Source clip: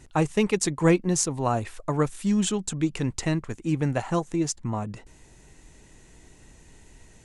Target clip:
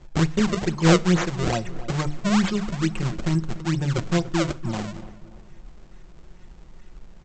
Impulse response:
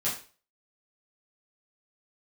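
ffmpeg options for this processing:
-filter_complex "[0:a]lowshelf=frequency=130:gain=10.5,bandreject=frequency=50:width_type=h:width=6,bandreject=frequency=100:width_type=h:width=6,bandreject=frequency=150:width_type=h:width=6,bandreject=frequency=200:width_type=h:width=6,bandreject=frequency=250:width_type=h:width=6,bandreject=frequency=300:width_type=h:width=6,aecho=1:1:5.5:0.86,aresample=16000,acrusher=samples=11:mix=1:aa=0.000001:lfo=1:lforange=17.6:lforate=2.3,aresample=44100,asplit=2[link_01][link_02];[link_02]adelay=289,lowpass=frequency=1700:poles=1,volume=-15dB,asplit=2[link_03][link_04];[link_04]adelay=289,lowpass=frequency=1700:poles=1,volume=0.43,asplit=2[link_05][link_06];[link_06]adelay=289,lowpass=frequency=1700:poles=1,volume=0.43,asplit=2[link_07][link_08];[link_08]adelay=289,lowpass=frequency=1700:poles=1,volume=0.43[link_09];[link_01][link_03][link_05][link_07][link_09]amix=inputs=5:normalize=0,asplit=2[link_10][link_11];[1:a]atrim=start_sample=2205,asetrate=29547,aresample=44100[link_12];[link_11][link_12]afir=irnorm=-1:irlink=0,volume=-28.5dB[link_13];[link_10][link_13]amix=inputs=2:normalize=0,volume=-3.5dB"

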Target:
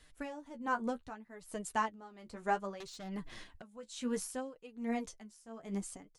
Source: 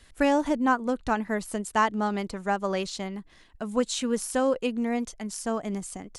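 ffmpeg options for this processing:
ffmpeg -i in.wav -filter_complex "[0:a]flanger=delay=6.4:depth=7.4:regen=27:speed=0.65:shape=sinusoidal,asettb=1/sr,asplit=3[link_01][link_02][link_03];[link_01]atrim=end=2.804[link_04];[link_02]atrim=start=2.8:end=3.62,asetpts=PTS-STARTPTS,afade=type=in:duration=0.004:curve=qsin,afade=type=out:start_time=0.816:duration=0.004:curve=qsin,aeval=exprs='0.0708*sin(PI/2*2.82*val(0)/0.0708)':channel_layout=same[link_05];[link_03]atrim=start=3.616[link_06];[link_04][link_05]acrossfade=duration=0.004:curve1=hsin:curve2=qsin[link_07];[link_07][link_06]acrossfade=duration=0.004:curve1=qsin:curve2=hsin,aeval=exprs='val(0)*pow(10,-19*(0.5-0.5*cos(2*PI*1.2*n/s))/20)':channel_layout=same,volume=-2.5dB" out.wav

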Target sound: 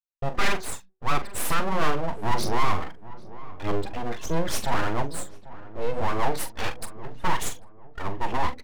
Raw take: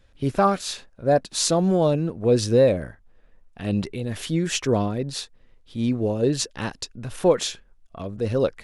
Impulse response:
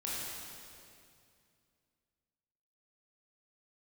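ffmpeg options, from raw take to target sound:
-filter_complex "[0:a]afftdn=noise_reduction=29:noise_floor=-33,agate=range=-54dB:threshold=-44dB:ratio=16:detection=peak,bandreject=frequency=62.76:width_type=h:width=4,bandreject=frequency=125.52:width_type=h:width=4,bandreject=frequency=188.28:width_type=h:width=4,bandreject=frequency=251.04:width_type=h:width=4,bandreject=frequency=313.8:width_type=h:width=4,aphaser=in_gain=1:out_gain=1:delay=4.6:decay=0.52:speed=1.6:type=sinusoidal,aresample=16000,asoftclip=type=tanh:threshold=-13.5dB,aresample=44100,asplit=2[link_01][link_02];[link_02]highpass=frequency=720:poles=1,volume=14dB,asoftclip=type=tanh:threshold=-12dB[link_03];[link_01][link_03]amix=inputs=2:normalize=0,lowpass=frequency=2700:poles=1,volume=-6dB,aeval=exprs='abs(val(0))':channel_layout=same,asplit=2[link_04][link_05];[link_05]adelay=42,volume=-11dB[link_06];[link_04][link_06]amix=inputs=2:normalize=0,asplit=2[link_07][link_08];[link_08]adelay=793,lowpass=frequency=1200:poles=1,volume=-16.5dB,asplit=2[link_09][link_10];[link_10]adelay=793,lowpass=frequency=1200:poles=1,volume=0.41,asplit=2[link_11][link_12];[link_12]adelay=793,lowpass=frequency=1200:poles=1,volume=0.41,asplit=2[link_13][link_14];[link_14]adelay=793,lowpass=frequency=1200:poles=1,volume=0.41[link_15];[link_07][link_09][link_11][link_13][link_15]amix=inputs=5:normalize=0"

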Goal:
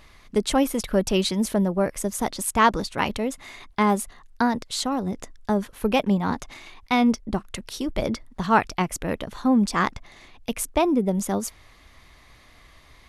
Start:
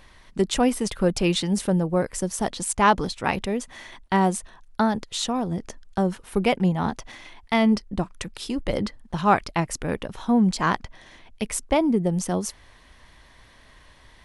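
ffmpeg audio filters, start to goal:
ffmpeg -i in.wav -af "asetrate=48000,aresample=44100" out.wav

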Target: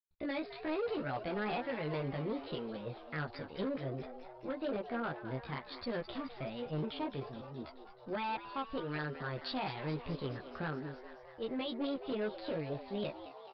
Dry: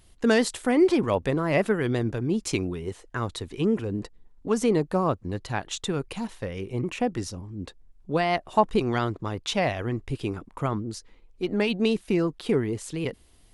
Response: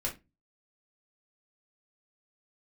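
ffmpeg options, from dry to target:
-filter_complex "[0:a]agate=range=-56dB:threshold=-49dB:ratio=16:detection=peak,adynamicequalizer=threshold=0.00794:dfrequency=1300:dqfactor=1.9:tfrequency=1300:tqfactor=1.9:attack=5:release=100:ratio=0.375:range=2:mode=boostabove:tftype=bell,alimiter=limit=-18dB:level=0:latency=1:release=402,flanger=delay=15.5:depth=3.9:speed=1.2,aresample=8000,volume=26.5dB,asoftclip=hard,volume=-26.5dB,aresample=44100,asetrate=55563,aresample=44100,atempo=0.793701,asplit=9[link_01][link_02][link_03][link_04][link_05][link_06][link_07][link_08][link_09];[link_02]adelay=213,afreqshift=120,volume=-12.5dB[link_10];[link_03]adelay=426,afreqshift=240,volume=-16.2dB[link_11];[link_04]adelay=639,afreqshift=360,volume=-20dB[link_12];[link_05]adelay=852,afreqshift=480,volume=-23.7dB[link_13];[link_06]adelay=1065,afreqshift=600,volume=-27.5dB[link_14];[link_07]adelay=1278,afreqshift=720,volume=-31.2dB[link_15];[link_08]adelay=1491,afreqshift=840,volume=-35dB[link_16];[link_09]adelay=1704,afreqshift=960,volume=-38.7dB[link_17];[link_01][link_10][link_11][link_12][link_13][link_14][link_15][link_16][link_17]amix=inputs=9:normalize=0,volume=-5.5dB"

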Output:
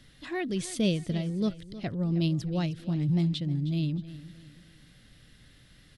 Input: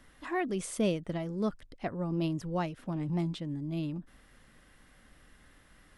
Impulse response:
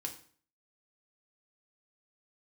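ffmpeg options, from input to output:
-af "equalizer=frequency=125:width_type=o:width=1:gain=12,equalizer=frequency=1000:width_type=o:width=1:gain=-9,equalizer=frequency=4000:width_type=o:width=1:gain=11,aecho=1:1:313|626|939:0.168|0.0655|0.0255"

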